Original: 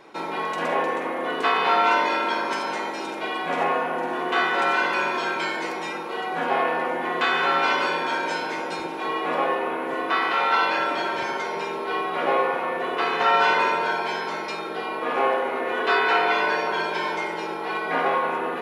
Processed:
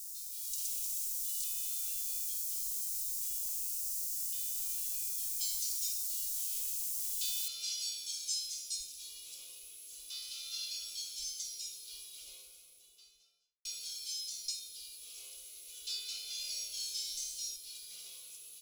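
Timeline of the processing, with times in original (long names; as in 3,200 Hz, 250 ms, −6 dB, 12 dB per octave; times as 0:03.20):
0:01.44–0:05.41: high-frequency loss of the air 390 metres
0:07.48: noise floor change −47 dB −70 dB
0:12.02–0:13.65: fade out and dull
0:16.36–0:17.56: flutter between parallel walls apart 4.9 metres, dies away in 0.5 s
whole clip: inverse Chebyshev band-stop filter 110–1,900 Hz, stop band 60 dB; parametric band 170 Hz +12.5 dB 1.2 octaves; automatic gain control gain up to 7.5 dB; level +3.5 dB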